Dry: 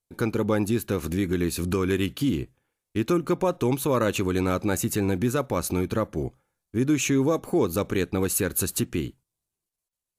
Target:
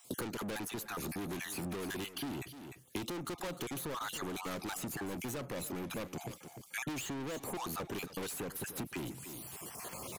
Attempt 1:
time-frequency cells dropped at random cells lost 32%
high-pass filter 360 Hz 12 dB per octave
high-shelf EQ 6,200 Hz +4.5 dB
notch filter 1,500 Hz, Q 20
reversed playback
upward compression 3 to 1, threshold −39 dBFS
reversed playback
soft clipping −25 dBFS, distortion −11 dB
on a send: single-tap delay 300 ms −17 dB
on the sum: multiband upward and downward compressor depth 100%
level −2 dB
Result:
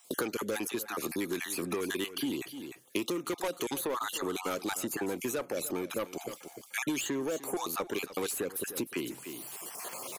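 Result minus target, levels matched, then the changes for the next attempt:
125 Hz band −9.0 dB; soft clipping: distortion −8 dB
change: high-pass filter 120 Hz 12 dB per octave
change: soft clipping −36 dBFS, distortion −3 dB

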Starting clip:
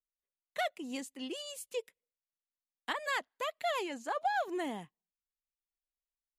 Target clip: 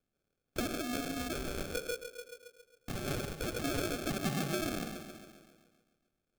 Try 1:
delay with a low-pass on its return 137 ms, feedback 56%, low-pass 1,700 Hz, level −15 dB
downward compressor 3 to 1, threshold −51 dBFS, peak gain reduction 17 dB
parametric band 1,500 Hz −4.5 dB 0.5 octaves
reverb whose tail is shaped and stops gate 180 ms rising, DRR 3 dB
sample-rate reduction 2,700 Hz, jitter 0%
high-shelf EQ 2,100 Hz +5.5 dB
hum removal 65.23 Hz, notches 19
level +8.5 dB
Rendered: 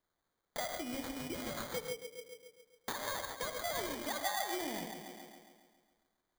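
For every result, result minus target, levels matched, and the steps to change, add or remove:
sample-rate reduction: distortion −22 dB; downward compressor: peak gain reduction +4 dB
change: sample-rate reduction 970 Hz, jitter 0%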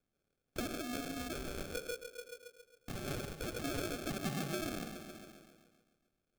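downward compressor: peak gain reduction +4 dB
change: downward compressor 3 to 1, threshold −45 dBFS, peak gain reduction 13 dB

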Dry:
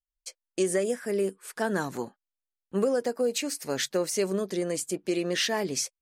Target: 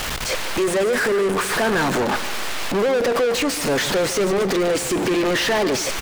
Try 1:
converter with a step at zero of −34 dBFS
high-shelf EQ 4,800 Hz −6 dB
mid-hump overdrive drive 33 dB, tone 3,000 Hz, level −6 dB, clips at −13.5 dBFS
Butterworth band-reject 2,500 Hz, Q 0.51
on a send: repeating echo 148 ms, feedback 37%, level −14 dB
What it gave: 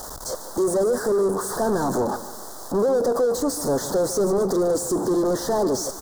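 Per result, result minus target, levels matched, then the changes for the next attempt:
2,000 Hz band −14.0 dB; converter with a step at zero: distortion −8 dB
remove: Butterworth band-reject 2,500 Hz, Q 0.51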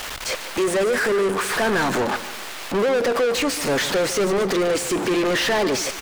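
converter with a step at zero: distortion −8 dB
change: converter with a step at zero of −23 dBFS

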